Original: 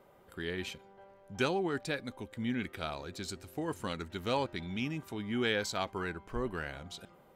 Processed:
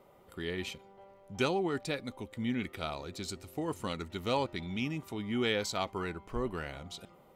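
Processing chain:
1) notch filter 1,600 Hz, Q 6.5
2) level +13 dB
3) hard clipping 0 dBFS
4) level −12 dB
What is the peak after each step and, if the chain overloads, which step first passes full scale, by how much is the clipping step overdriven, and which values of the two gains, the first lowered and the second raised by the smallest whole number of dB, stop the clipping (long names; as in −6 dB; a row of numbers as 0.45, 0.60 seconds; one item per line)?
−18.5, −5.5, −5.5, −17.5 dBFS
no step passes full scale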